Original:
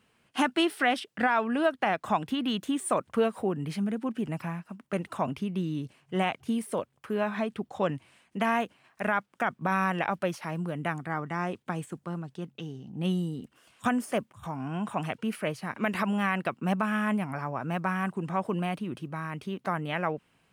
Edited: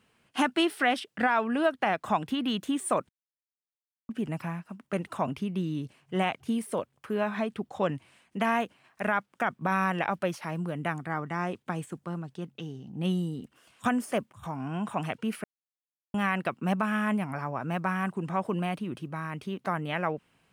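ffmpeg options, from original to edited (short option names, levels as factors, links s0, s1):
-filter_complex "[0:a]asplit=5[s0][s1][s2][s3][s4];[s0]atrim=end=3.09,asetpts=PTS-STARTPTS,afade=t=out:st=3.086:d=0.004:c=hsin[s5];[s1]atrim=start=3.09:end=4.09,asetpts=PTS-STARTPTS,volume=0[s6];[s2]atrim=start=4.09:end=15.44,asetpts=PTS-STARTPTS,afade=t=in:d=0.004:c=hsin,afade=t=out:st=11.346:d=0.004:c=hsin[s7];[s3]atrim=start=15.44:end=16.14,asetpts=PTS-STARTPTS,volume=0[s8];[s4]atrim=start=16.14,asetpts=PTS-STARTPTS,afade=t=in:d=0.004:c=hsin[s9];[s5][s6][s7][s8][s9]concat=n=5:v=0:a=1"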